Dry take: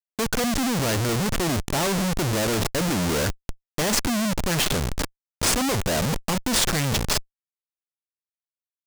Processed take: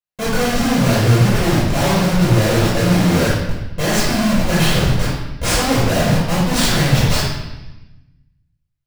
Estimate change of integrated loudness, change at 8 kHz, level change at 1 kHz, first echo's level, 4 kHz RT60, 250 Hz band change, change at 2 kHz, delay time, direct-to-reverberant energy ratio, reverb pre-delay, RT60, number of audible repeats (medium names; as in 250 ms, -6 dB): +7.5 dB, +1.5 dB, +7.0 dB, no echo, 1.0 s, +9.0 dB, +7.0 dB, no echo, -9.5 dB, 3 ms, 1.0 s, no echo